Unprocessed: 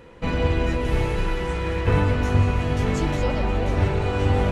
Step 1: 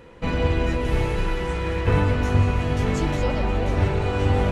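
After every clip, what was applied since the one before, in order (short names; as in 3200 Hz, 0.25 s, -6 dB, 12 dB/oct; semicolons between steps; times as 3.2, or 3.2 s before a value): nothing audible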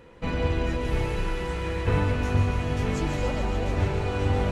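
thin delay 0.142 s, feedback 80%, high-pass 3500 Hz, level -6.5 dB; gain -4 dB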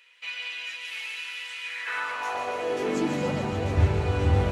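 notches 50/100/150/200/250 Hz; high-pass sweep 2600 Hz -> 85 Hz, 1.63–3.68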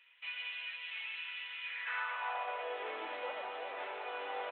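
HPF 580 Hz 24 dB/oct; downsampling 8000 Hz; gain -7 dB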